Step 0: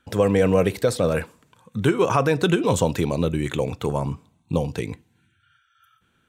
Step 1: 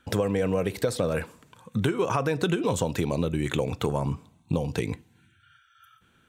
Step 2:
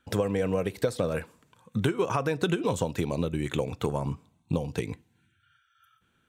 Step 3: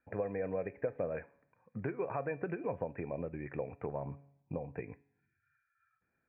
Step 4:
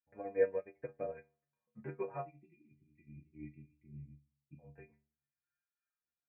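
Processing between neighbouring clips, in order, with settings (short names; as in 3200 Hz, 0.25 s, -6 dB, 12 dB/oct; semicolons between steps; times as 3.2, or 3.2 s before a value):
compressor, threshold -25 dBFS, peak gain reduction 11.5 dB; gain +3 dB
upward expander 1.5:1, over -35 dBFS
rippled Chebyshev low-pass 2500 Hz, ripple 9 dB; resonator 140 Hz, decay 0.68 s, harmonics all, mix 40%; gain -1 dB
spectral delete 2.26–4.59, 370–1900 Hz; metallic resonator 71 Hz, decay 0.53 s, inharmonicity 0.008; upward expander 2.5:1, over -56 dBFS; gain +15 dB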